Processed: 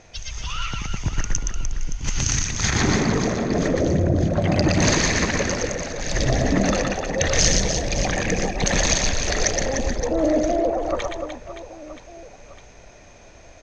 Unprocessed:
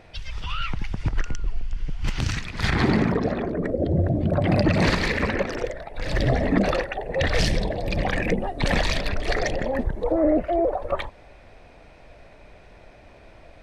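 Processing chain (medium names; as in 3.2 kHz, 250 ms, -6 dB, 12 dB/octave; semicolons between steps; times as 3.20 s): resonant low-pass 6.4 kHz, resonance Q 16; reverse bouncing-ball echo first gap 120 ms, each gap 1.5×, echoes 5; 3.50–4.25 s: level flattener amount 50%; trim -1 dB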